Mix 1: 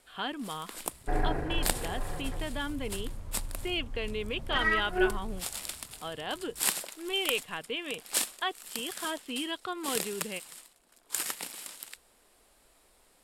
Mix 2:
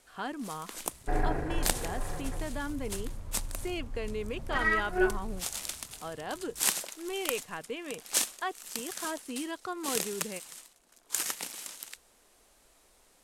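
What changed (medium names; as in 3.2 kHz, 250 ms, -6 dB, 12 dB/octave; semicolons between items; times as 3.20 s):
speech: remove resonant low-pass 3.3 kHz, resonance Q 3.9; first sound: add peaking EQ 6.2 kHz +8.5 dB 0.24 oct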